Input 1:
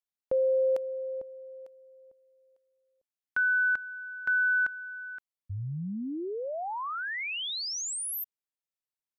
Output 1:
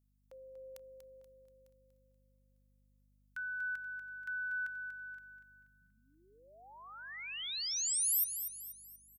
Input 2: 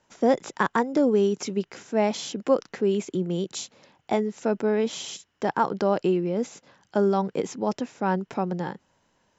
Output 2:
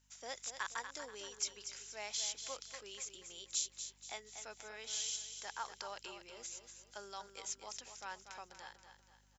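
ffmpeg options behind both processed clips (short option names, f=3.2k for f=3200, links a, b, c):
-af "highpass=f=870:p=1,aderivative,aeval=exprs='val(0)+0.0002*(sin(2*PI*50*n/s)+sin(2*PI*2*50*n/s)/2+sin(2*PI*3*50*n/s)/3+sin(2*PI*4*50*n/s)/4+sin(2*PI*5*50*n/s)/5)':c=same,aecho=1:1:240|480|720|960|1200:0.355|0.149|0.0626|0.0263|0.011"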